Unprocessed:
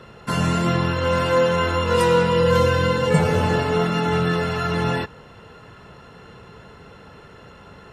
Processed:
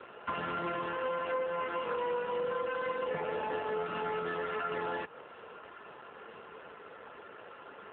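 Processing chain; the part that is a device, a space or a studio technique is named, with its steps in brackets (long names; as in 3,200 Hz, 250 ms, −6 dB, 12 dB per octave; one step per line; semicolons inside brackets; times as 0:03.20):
0:01.43–0:03.09: high-pass filter 68 Hz 12 dB per octave
voicemail (band-pass filter 380–3,000 Hz; downward compressor 6 to 1, threshold −31 dBFS, peak gain reduction 15 dB; AMR narrowband 7.4 kbit/s 8,000 Hz)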